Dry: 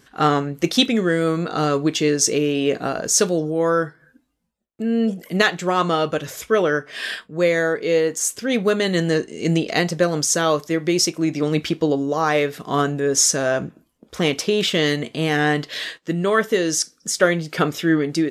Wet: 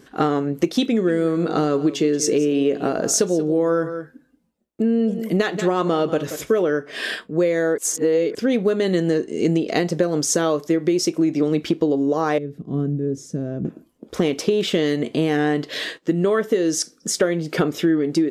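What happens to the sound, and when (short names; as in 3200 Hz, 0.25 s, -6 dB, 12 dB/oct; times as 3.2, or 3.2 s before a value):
0.88–6.68 echo 0.182 s -15.5 dB
7.78–8.35 reverse
12.38–13.65 EQ curve 160 Hz 0 dB, 370 Hz -12 dB, 900 Hz -26 dB
whole clip: bell 340 Hz +10 dB 2 oct; compressor, threshold -16 dBFS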